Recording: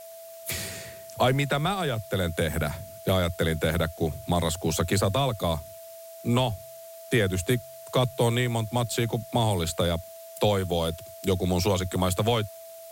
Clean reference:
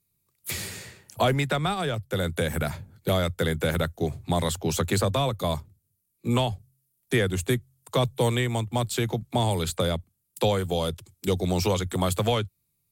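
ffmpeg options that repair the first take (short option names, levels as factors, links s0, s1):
-af "adeclick=t=4,bandreject=f=660:w=30,afftdn=nr=30:nf=-44"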